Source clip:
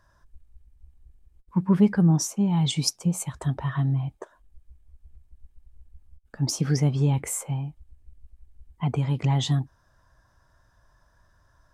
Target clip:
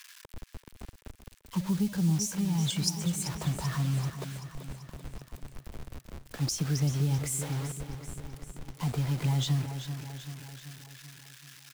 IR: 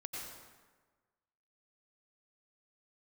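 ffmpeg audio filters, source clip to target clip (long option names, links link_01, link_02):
-filter_complex "[0:a]aeval=exprs='val(0)+0.5*0.0211*sgn(val(0))':channel_layout=same,acrossover=split=1700[link_01][link_02];[link_01]acrusher=bits=5:mix=0:aa=0.000001[link_03];[link_03][link_02]amix=inputs=2:normalize=0,aecho=1:1:386|772|1158|1544|1930|2316:0.266|0.152|0.0864|0.0493|0.0281|0.016,acrossover=split=180|3000[link_04][link_05][link_06];[link_05]acompressor=threshold=-30dB:ratio=6[link_07];[link_04][link_07][link_06]amix=inputs=3:normalize=0,volume=-5dB"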